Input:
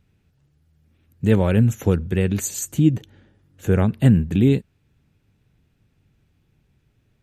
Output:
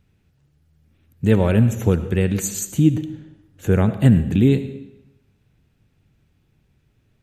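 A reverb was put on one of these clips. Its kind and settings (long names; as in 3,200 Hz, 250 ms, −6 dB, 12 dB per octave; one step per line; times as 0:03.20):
comb and all-pass reverb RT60 0.91 s, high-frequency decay 0.9×, pre-delay 35 ms, DRR 11.5 dB
level +1 dB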